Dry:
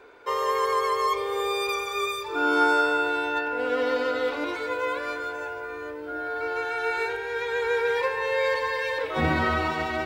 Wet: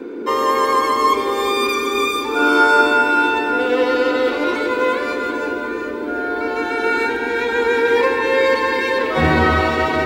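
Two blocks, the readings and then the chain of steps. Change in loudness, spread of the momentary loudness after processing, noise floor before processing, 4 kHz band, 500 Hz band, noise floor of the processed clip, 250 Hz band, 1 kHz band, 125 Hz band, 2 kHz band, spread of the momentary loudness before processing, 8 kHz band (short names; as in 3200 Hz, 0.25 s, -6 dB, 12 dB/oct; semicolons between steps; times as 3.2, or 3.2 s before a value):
+9.0 dB, 8 LU, -36 dBFS, +8.5 dB, +9.0 dB, -25 dBFS, +11.5 dB, +9.0 dB, n/a, +8.5 dB, 8 LU, +8.5 dB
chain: band noise 240–460 Hz -37 dBFS; echo with dull and thin repeats by turns 0.184 s, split 1100 Hz, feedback 73%, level -6.5 dB; gain +8 dB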